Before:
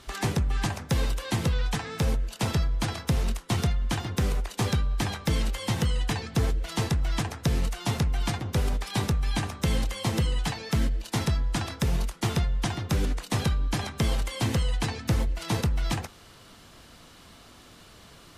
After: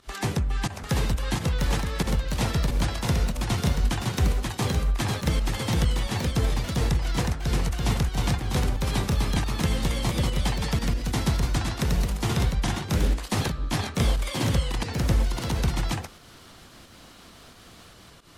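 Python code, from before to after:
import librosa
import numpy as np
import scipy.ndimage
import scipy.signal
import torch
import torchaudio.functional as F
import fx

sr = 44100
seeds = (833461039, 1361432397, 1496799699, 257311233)

y = fx.volume_shaper(x, sr, bpm=89, per_beat=1, depth_db=-15, release_ms=138.0, shape='fast start')
y = fx.echo_pitch(y, sr, ms=753, semitones=1, count=2, db_per_echo=-3.0)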